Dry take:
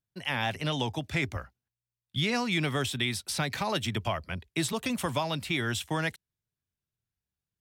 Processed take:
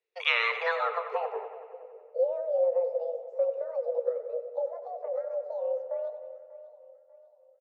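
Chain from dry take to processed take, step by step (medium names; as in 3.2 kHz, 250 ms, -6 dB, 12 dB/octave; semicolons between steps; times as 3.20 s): pitch bend over the whole clip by +12 st starting unshifted; treble shelf 2.6 kHz +10 dB; band-stop 2.8 kHz, Q 5.3; feedback delay 592 ms, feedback 44%, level -17 dB; low-pass sweep 2.4 kHz -> 210 Hz, 0.32–1.91 s; on a send: bucket-brigade echo 93 ms, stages 2048, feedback 69%, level -11.5 dB; on the sum: frequency shift +340 Hz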